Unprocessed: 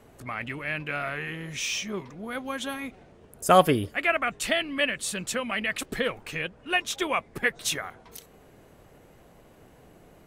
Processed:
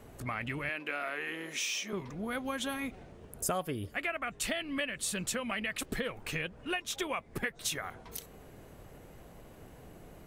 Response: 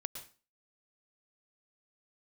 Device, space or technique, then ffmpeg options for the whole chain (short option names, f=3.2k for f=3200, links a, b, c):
ASMR close-microphone chain: -filter_complex "[0:a]lowshelf=f=120:g=6,acompressor=threshold=-32dB:ratio=6,highshelf=f=11k:g=5,asettb=1/sr,asplit=3[a][b][c];[a]atrim=end=0.694[d];[b]atrim=start=0.69:end=1.93,asetpts=PTS-STARTPTS,afade=t=in:d=0.004:c=qsin,afade=t=out:st=1.236:d=0.004:c=qsin,highpass=f=260:w=0.5412,highpass=f=260:w=1.3066[e];[c]atrim=start=1.926[f];[d][e]acrossfade=d=0.004:c1=hsin:c2=qsin[g];[g][f]acrossfade=d=0.004:c1=qsin:c2=hsin"